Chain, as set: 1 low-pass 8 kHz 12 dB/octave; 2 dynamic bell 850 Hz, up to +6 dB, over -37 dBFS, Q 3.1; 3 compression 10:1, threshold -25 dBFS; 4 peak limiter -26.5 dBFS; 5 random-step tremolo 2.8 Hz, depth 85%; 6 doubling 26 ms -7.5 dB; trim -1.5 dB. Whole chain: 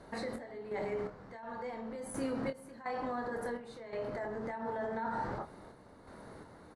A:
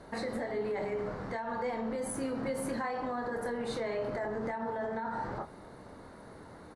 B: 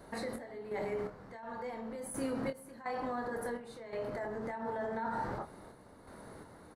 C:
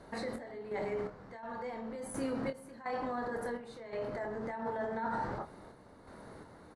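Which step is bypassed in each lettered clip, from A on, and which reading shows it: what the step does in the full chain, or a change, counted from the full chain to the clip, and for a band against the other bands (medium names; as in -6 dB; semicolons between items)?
5, loudness change +4.0 LU; 1, 8 kHz band +3.0 dB; 3, mean gain reduction 4.0 dB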